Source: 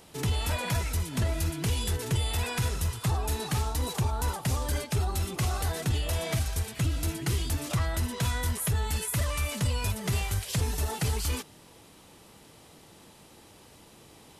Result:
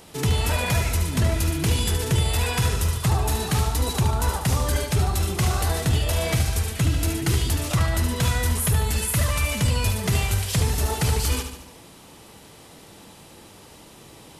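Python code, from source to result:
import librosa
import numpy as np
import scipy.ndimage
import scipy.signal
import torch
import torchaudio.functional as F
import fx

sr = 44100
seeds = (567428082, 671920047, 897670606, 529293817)

y = fx.echo_feedback(x, sr, ms=73, feedback_pct=53, wet_db=-7.5)
y = y * librosa.db_to_amplitude(6.0)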